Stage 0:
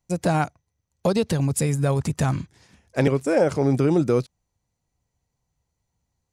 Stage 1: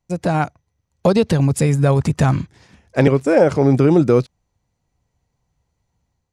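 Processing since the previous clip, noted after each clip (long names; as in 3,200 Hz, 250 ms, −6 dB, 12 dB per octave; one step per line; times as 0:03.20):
high-shelf EQ 6,700 Hz −11 dB
automatic gain control gain up to 5 dB
level +2 dB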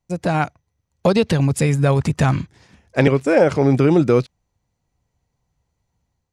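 dynamic equaliser 2,600 Hz, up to +5 dB, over −34 dBFS, Q 0.77
level −1.5 dB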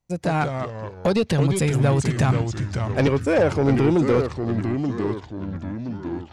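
soft clipping −10 dBFS, distortion −16 dB
delay with pitch and tempo change per echo 131 ms, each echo −3 semitones, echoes 3, each echo −6 dB
level −2 dB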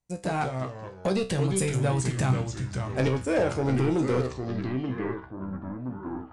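low-pass filter sweep 9,300 Hz → 1,200 Hz, 0:04.20–0:05.34
tuned comb filter 64 Hz, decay 0.28 s, harmonics all, mix 80%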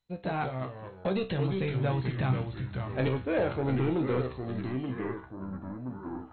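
level −3.5 dB
MP2 32 kbit/s 16,000 Hz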